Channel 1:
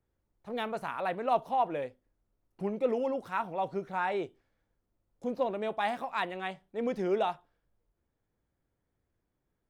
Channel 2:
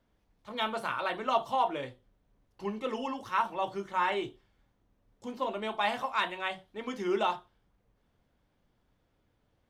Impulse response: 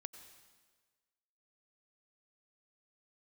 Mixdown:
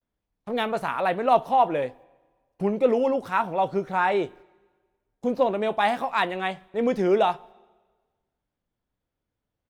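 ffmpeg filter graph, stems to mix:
-filter_complex "[0:a]agate=range=0.02:threshold=0.00158:ratio=16:detection=peak,acontrast=49,volume=1.19,asplit=2[s0][s1];[s1]volume=0.237[s2];[1:a]adelay=15,volume=0.282[s3];[2:a]atrim=start_sample=2205[s4];[s2][s4]afir=irnorm=-1:irlink=0[s5];[s0][s3][s5]amix=inputs=3:normalize=0"

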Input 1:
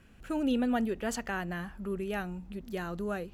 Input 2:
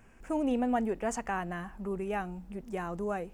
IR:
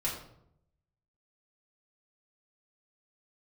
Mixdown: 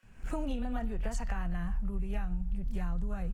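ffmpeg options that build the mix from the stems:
-filter_complex "[0:a]highpass=830,equalizer=f=5000:w=1.5:g=3,volume=0.299,asplit=2[s0][s1];[s1]volume=0.501[s2];[1:a]dynaudnorm=f=110:g=3:m=3.55,lowshelf=f=230:t=q:w=1.5:g=7,acrossover=split=130[s3][s4];[s4]acompressor=threshold=0.0562:ratio=6[s5];[s3][s5]amix=inputs=2:normalize=0,adelay=29,volume=0.501[s6];[2:a]atrim=start_sample=2205[s7];[s2][s7]afir=irnorm=-1:irlink=0[s8];[s0][s6][s8]amix=inputs=3:normalize=0,asubboost=boost=11:cutoff=91,acompressor=threshold=0.0355:ratio=6"

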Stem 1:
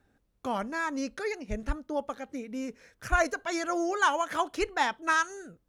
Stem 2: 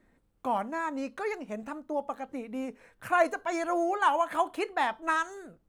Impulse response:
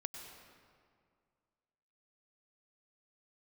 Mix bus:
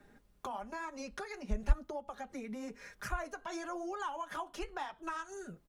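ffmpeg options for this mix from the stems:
-filter_complex "[0:a]aecho=1:1:4.9:0.97,volume=1.33[s0];[1:a]flanger=delay=6.2:depth=9.9:regen=-38:speed=0.99:shape=triangular,volume=-1,adelay=0.3,volume=1.26,asplit=2[s1][s2];[s2]apad=whole_len=250824[s3];[s0][s3]sidechaincompress=threshold=0.0141:ratio=8:attack=7:release=127[s4];[s4][s1]amix=inputs=2:normalize=0,acrossover=split=140[s5][s6];[s6]acompressor=threshold=0.00631:ratio=2.5[s7];[s5][s7]amix=inputs=2:normalize=0"

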